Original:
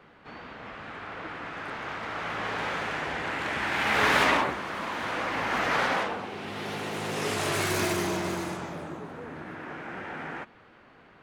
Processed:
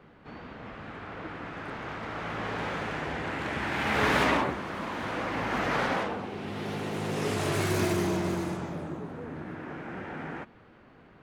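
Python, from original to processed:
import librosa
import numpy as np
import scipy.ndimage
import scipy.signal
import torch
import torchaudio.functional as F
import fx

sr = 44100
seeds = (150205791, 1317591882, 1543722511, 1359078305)

y = fx.low_shelf(x, sr, hz=480.0, db=9.5)
y = y * librosa.db_to_amplitude(-4.5)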